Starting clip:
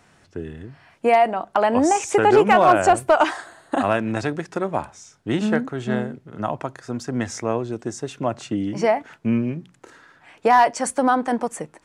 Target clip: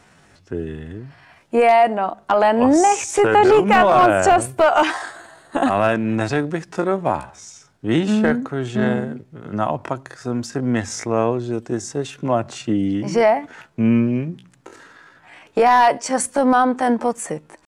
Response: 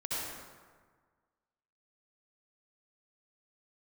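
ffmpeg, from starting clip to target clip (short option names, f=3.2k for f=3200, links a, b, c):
-af "apsyclip=11.5dB,atempo=0.67,volume=-7.5dB"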